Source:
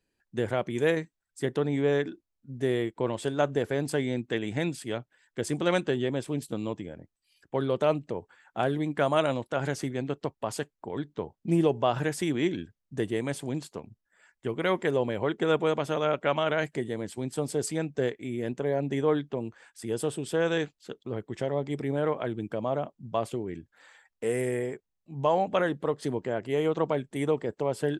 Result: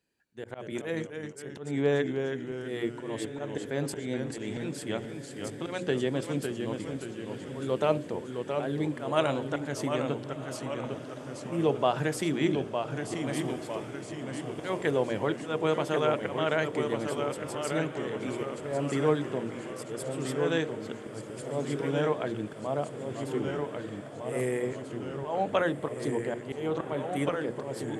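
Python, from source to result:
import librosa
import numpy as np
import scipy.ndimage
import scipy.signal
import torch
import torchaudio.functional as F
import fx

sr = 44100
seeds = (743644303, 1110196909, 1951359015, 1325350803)

p1 = scipy.signal.sosfilt(scipy.signal.butter(2, 64.0, 'highpass', fs=sr, output='sos'), x)
p2 = fx.peak_eq(p1, sr, hz=88.0, db=-5.0, octaves=0.31)
p3 = fx.hum_notches(p2, sr, base_hz=60, count=10)
p4 = fx.auto_swell(p3, sr, attack_ms=220.0)
p5 = p4 + fx.echo_diffused(p4, sr, ms=1481, feedback_pct=68, wet_db=-14.0, dry=0)
y = fx.echo_pitch(p5, sr, ms=206, semitones=-1, count=3, db_per_echo=-6.0)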